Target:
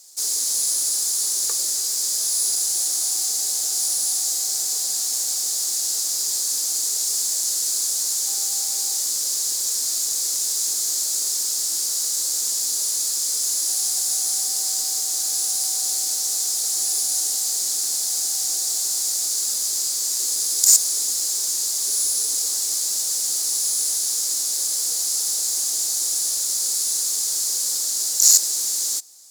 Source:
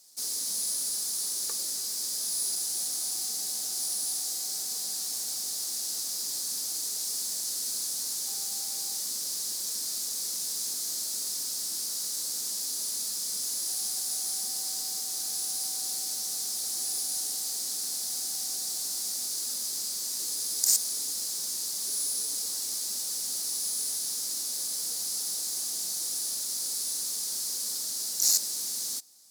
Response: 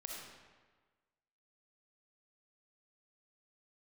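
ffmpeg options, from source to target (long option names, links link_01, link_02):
-af "highpass=frequency=290:width=0.5412,highpass=frequency=290:width=1.3066,equalizer=frequency=7100:width=3.3:gain=7,aeval=exprs='0.944*sin(PI/2*1.58*val(0)/0.944)':channel_layout=same,volume=-1dB"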